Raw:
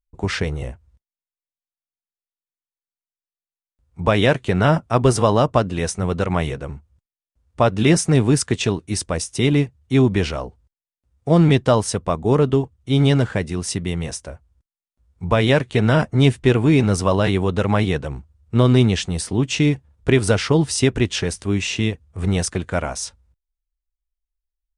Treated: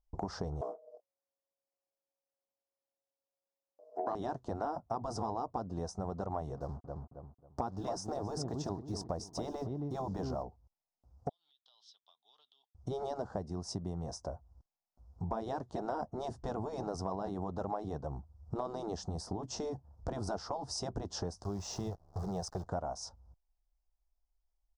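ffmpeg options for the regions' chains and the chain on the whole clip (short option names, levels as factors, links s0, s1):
-filter_complex "[0:a]asettb=1/sr,asplit=3[s0][s1][s2];[s0]atrim=end=0.614[s3];[s1]atrim=start=0.61:end=4.15,asetpts=PTS-STARTPTS,afade=t=in:d=0.004:c=qsin,afade=t=out:st=3.536:d=0.004:c=qsin,aeval=exprs='val(0)*sin(2*PI*550*n/s)':c=same,highpass=f=280:t=q:w=1.8,asplit=2[s4][s5];[s5]adelay=27,volume=0.224[s6];[s4][s6]amix=inputs=2:normalize=0,atrim=end_sample=156114[s7];[s2]atrim=start=4.146[s8];[s3][s7]acrossfade=d=0.004:c1=hsin:c2=qsin[s9];[s9][s8]acrossfade=d=0.004:c1=qsin:c2=hsin,asettb=1/sr,asplit=3[s10][s11][s12];[s10]atrim=end=6.574[s13];[s11]atrim=start=6.57:end=10.43,asetpts=PTS-STARTPTS,afade=t=in:d=0.004:c=qsin,afade=t=out:st=3.856:d=0.004:c=qsin,acrusher=bits=6:mix=0:aa=0.5,asplit=2[s14][s15];[s15]adelay=271,lowpass=f=1900:p=1,volume=0.282,asplit=2[s16][s17];[s17]adelay=271,lowpass=f=1900:p=1,volume=0.27,asplit=2[s18][s19];[s19]adelay=271,lowpass=f=1900:p=1,volume=0.27[s20];[s14][s16][s18][s20]amix=inputs=4:normalize=0,atrim=end_sample=170226[s21];[s12]atrim=start=10.426[s22];[s13][s21]acrossfade=d=0.004:c1=hsin:c2=qsin[s23];[s23][s22]acrossfade=d=0.004:c1=qsin:c2=hsin,asettb=1/sr,asplit=3[s24][s25][s26];[s24]atrim=end=11.294[s27];[s25]atrim=start=11.29:end=12.75,asetpts=PTS-STARTPTS,afade=t=in:d=0.004:c=qsin,afade=t=out:st=1.456:d=0.004:c=qsin,asuperpass=centerf=3400:order=4:qfactor=5,acompressor=threshold=0.00447:ratio=12:attack=3.2:release=140:knee=1:detection=peak[s28];[s26]atrim=start=12.746[s29];[s27][s28]acrossfade=d=0.004:c1=hsin:c2=qsin[s30];[s30][s29]acrossfade=d=0.004:c1=qsin:c2=hsin,asettb=1/sr,asplit=3[s31][s32][s33];[s31]atrim=end=21.444[s34];[s32]atrim=start=21.44:end=22.67,asetpts=PTS-STARTPTS,afade=t=in:d=0.004:c=qsin,afade=t=out:st=1.226:d=0.004:c=qsin,equalizer=f=260:w=2.8:g=-15,acrusher=bits=7:dc=4:mix=0:aa=0.000001[s35];[s33]atrim=start=22.666[s36];[s34][s35]acrossfade=d=0.004:c1=hsin:c2=qsin[s37];[s37][s36]acrossfade=d=0.004:c1=qsin:c2=hsin,afftfilt=real='re*lt(hypot(re,im),0.794)':imag='im*lt(hypot(re,im),0.794)':win_size=1024:overlap=0.75,firequalizer=gain_entry='entry(490,0);entry(720,10);entry(2300,-30);entry(5100,-1);entry(8800,-16)':delay=0.05:min_phase=1,acompressor=threshold=0.00891:ratio=4,volume=1.33"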